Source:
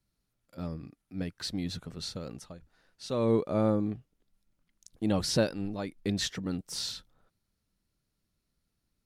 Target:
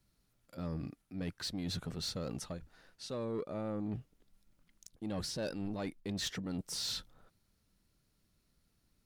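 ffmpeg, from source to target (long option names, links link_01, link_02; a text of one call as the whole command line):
ffmpeg -i in.wav -af "areverse,acompressor=threshold=-38dB:ratio=8,areverse,asoftclip=type=tanh:threshold=-35.5dB,volume=5dB" out.wav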